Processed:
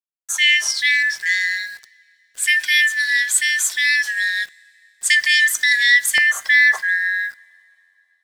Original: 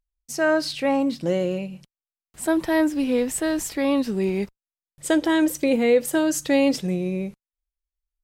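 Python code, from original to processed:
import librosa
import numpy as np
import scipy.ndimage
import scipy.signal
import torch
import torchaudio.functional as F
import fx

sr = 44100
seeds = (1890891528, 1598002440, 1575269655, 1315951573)

y = fx.band_shuffle(x, sr, order='4123')
y = scipy.signal.sosfilt(scipy.signal.butter(2, 1300.0, 'highpass', fs=sr, output='sos'), y)
y = fx.peak_eq(y, sr, hz=fx.steps((0.0, 6700.0), (6.18, 730.0)), db=14.0, octaves=2.8)
y = np.where(np.abs(y) >= 10.0 ** (-38.0 / 20.0), y, 0.0)
y = fx.rev_double_slope(y, sr, seeds[0], early_s=0.26, late_s=3.0, knee_db=-18, drr_db=18.0)
y = y * 10.0 ** (-1.5 / 20.0)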